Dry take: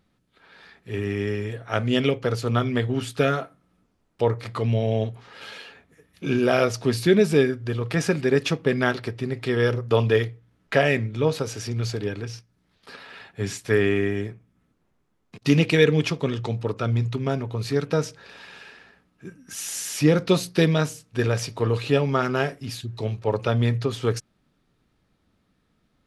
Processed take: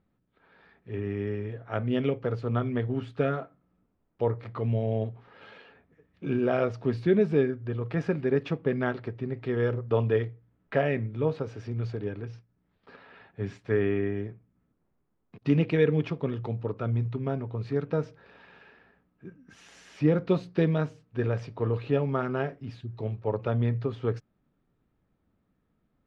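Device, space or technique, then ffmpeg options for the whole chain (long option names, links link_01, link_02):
phone in a pocket: -af "lowpass=3400,highshelf=frequency=2000:gain=-11.5,volume=-4.5dB"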